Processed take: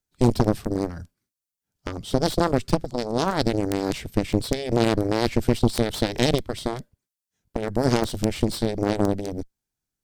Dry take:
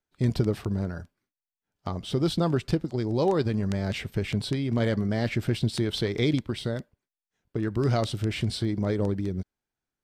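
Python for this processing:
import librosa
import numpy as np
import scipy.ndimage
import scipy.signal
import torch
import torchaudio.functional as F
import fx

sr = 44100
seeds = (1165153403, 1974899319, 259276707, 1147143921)

y = fx.bass_treble(x, sr, bass_db=8, treble_db=11)
y = fx.cheby_harmonics(y, sr, harmonics=(4, 7), levels_db=(-7, -10), full_scale_db=-5.5)
y = F.gain(torch.from_numpy(y), -5.0).numpy()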